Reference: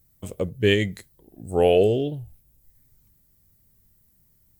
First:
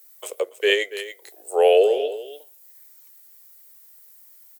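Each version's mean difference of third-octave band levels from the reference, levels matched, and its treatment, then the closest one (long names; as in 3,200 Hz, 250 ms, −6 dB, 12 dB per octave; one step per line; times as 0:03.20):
10.0 dB: Butterworth high-pass 410 Hz 48 dB per octave
single-tap delay 283 ms −13.5 dB
one half of a high-frequency compander encoder only
level +3.5 dB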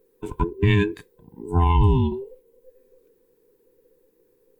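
7.5 dB: frequency inversion band by band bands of 500 Hz
bass and treble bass +4 dB, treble −11 dB
boost into a limiter +10.5 dB
level −8.5 dB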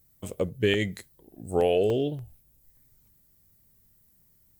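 2.5 dB: low-shelf EQ 150 Hz −5 dB
downward compressor, threshold −19 dBFS, peak gain reduction 6 dB
regular buffer underruns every 0.29 s, samples 64, zero, from 0:00.74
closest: third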